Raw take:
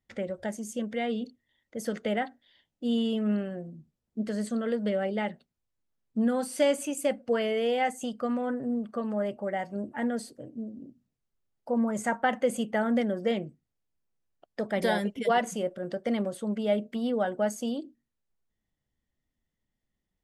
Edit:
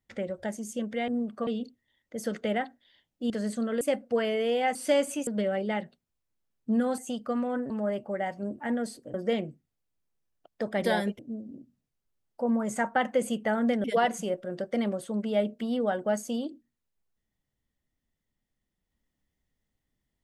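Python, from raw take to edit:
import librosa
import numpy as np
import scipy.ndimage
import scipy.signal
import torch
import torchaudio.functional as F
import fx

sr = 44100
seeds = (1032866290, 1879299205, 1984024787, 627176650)

y = fx.edit(x, sr, fx.cut(start_s=2.91, length_s=1.33),
    fx.swap(start_s=4.75, length_s=1.71, other_s=6.98, other_length_s=0.94),
    fx.move(start_s=8.64, length_s=0.39, to_s=1.08),
    fx.move(start_s=13.12, length_s=2.05, to_s=10.47), tone=tone)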